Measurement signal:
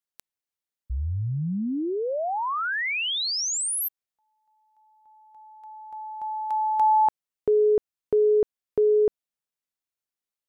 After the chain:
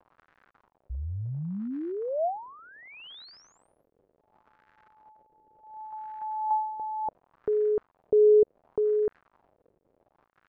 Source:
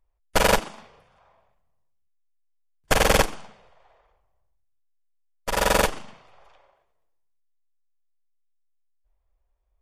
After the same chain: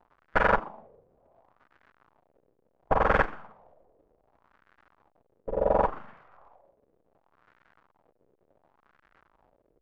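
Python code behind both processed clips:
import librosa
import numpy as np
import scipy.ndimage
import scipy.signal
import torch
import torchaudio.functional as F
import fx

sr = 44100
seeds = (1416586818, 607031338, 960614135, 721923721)

y = fx.dmg_crackle(x, sr, seeds[0], per_s=150.0, level_db=-36.0)
y = fx.filter_lfo_lowpass(y, sr, shape='sine', hz=0.69, low_hz=450.0, high_hz=1600.0, q=2.5)
y = F.gain(torch.from_numpy(y), -6.0).numpy()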